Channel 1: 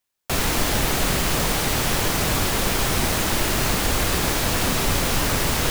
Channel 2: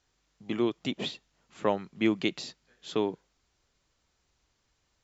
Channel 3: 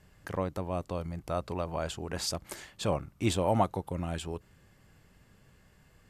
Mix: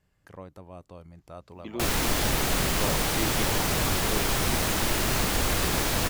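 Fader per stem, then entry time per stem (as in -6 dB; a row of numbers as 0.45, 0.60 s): -4.0, -8.0, -11.0 dB; 1.50, 1.15, 0.00 s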